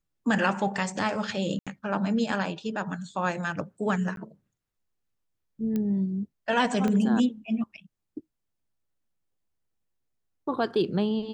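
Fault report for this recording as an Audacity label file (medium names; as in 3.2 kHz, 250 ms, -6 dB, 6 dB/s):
1.590000	1.670000	dropout 76 ms
4.160000	4.170000	dropout 12 ms
5.760000	5.760000	pop -18 dBFS
6.880000	6.880000	pop -16 dBFS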